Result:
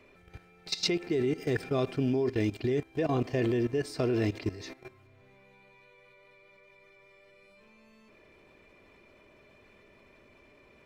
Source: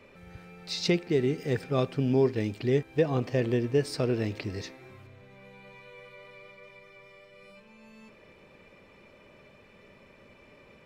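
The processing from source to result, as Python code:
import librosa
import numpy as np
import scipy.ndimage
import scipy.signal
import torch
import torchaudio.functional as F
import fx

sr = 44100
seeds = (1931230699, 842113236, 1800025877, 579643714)

y = x + 0.41 * np.pad(x, (int(2.9 * sr / 1000.0), 0))[:len(x)]
y = fx.level_steps(y, sr, step_db=16)
y = F.gain(torch.from_numpy(y), 5.0).numpy()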